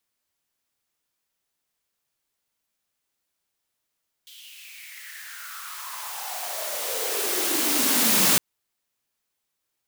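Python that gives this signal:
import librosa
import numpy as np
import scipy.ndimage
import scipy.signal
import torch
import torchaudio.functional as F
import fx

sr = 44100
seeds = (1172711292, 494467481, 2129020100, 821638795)

y = fx.riser_noise(sr, seeds[0], length_s=4.11, colour='white', kind='highpass', start_hz=3300.0, end_hz=180.0, q=6.1, swell_db=32, law='exponential')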